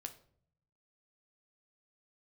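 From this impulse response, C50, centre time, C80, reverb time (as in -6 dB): 13.5 dB, 8 ms, 17.5 dB, 0.60 s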